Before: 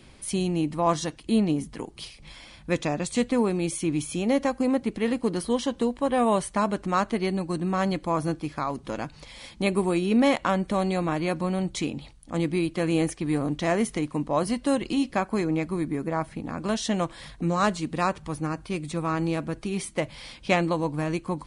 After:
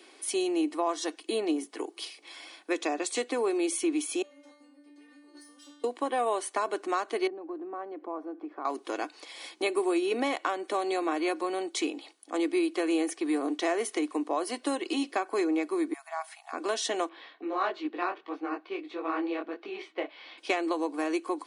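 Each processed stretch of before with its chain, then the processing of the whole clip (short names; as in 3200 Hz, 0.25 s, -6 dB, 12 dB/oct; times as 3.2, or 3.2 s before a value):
4.22–5.84 negative-ratio compressor -28 dBFS + metallic resonator 290 Hz, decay 0.76 s, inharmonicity 0.002 + tube stage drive 42 dB, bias 0.35
7.27–8.65 LPF 1100 Hz + compressor 4:1, threshold -33 dBFS
15.93–16.53 high shelf 5200 Hz +6.5 dB + compressor 1.5:1, threshold -38 dBFS + brick-wall FIR high-pass 630 Hz
17.09–20.38 LPF 3600 Hz 24 dB/oct + detuned doubles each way 52 cents
whole clip: steep high-pass 290 Hz 48 dB/oct; compressor, threshold -25 dBFS; comb 2.7 ms, depth 37%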